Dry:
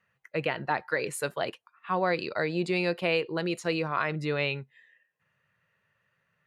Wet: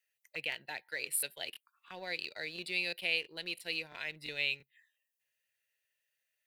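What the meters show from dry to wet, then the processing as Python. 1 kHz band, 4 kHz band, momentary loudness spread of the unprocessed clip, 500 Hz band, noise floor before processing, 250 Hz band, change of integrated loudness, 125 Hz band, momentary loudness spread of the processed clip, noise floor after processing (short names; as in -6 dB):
-20.0 dB, 0.0 dB, 6 LU, -17.5 dB, -76 dBFS, -19.5 dB, -7.0 dB, -22.0 dB, 11 LU, under -85 dBFS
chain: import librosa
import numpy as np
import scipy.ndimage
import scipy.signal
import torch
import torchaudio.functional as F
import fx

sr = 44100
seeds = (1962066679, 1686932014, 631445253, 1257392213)

p1 = F.preemphasis(torch.from_numpy(x), 0.97).numpy()
p2 = fx.env_phaser(p1, sr, low_hz=190.0, high_hz=1200.0, full_db=-47.0)
p3 = np.sign(p2) * np.maximum(np.abs(p2) - 10.0 ** (-56.5 / 20.0), 0.0)
p4 = p2 + (p3 * librosa.db_to_amplitude(-4.0))
p5 = fx.buffer_crackle(p4, sr, first_s=0.5, period_s=0.34, block=1024, kind='repeat')
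y = p5 * librosa.db_to_amplitude(4.0)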